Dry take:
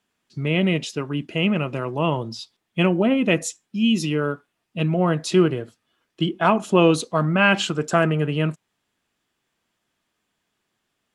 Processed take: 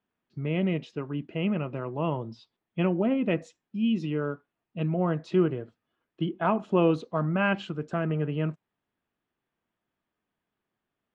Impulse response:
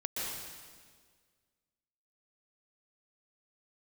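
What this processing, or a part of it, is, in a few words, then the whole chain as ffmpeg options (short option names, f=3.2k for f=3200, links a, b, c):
phone in a pocket: -filter_complex "[0:a]asettb=1/sr,asplit=3[a][b][c];[a]atrim=end=7.534[d];[b]atrim=start=7.53:end=8.1,asetpts=PTS-STARTPTS,afade=t=in:d=0.004:c=qsin,afade=t=out:st=0.566:d=0.004:c=qsin,equalizer=f=900:w=0.44:g=-5.5[e];[c]atrim=start=8.096[f];[d][e]acrossfade=d=0.004:c1=hsin:c2=qsin[g];[g][f]acrossfade=d=0.004:c1=qsin:c2=hsin,lowpass=3.9k,highshelf=f=2.4k:g=-11.5,volume=-6dB"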